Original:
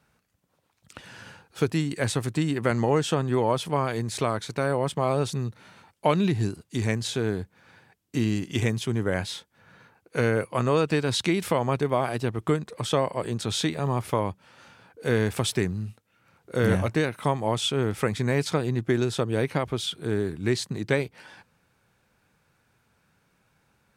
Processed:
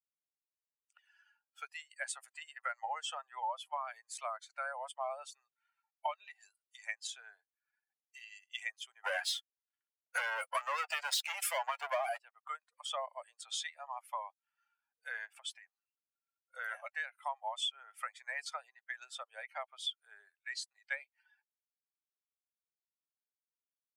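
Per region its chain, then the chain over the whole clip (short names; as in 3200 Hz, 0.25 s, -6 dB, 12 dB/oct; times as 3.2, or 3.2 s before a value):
9.04–12.18 sample leveller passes 5 + upward expander, over -36 dBFS
15.25–15.69 high shelf 7400 Hz -8 dB + compressor 4:1, threshold -26 dBFS
whole clip: per-bin expansion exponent 2; steep high-pass 620 Hz 72 dB/oct; compressor 5:1, threshold -39 dBFS; gain +4.5 dB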